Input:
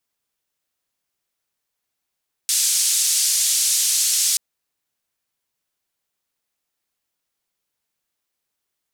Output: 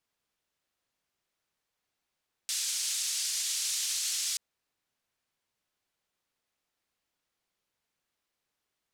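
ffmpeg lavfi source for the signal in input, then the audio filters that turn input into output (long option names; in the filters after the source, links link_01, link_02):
-f lavfi -i "anoisesrc=color=white:duration=1.88:sample_rate=44100:seed=1,highpass=frequency=5800,lowpass=frequency=8100,volume=-5.2dB"
-af "highshelf=frequency=7500:gain=-11.5,alimiter=limit=-23.5dB:level=0:latency=1:release=34"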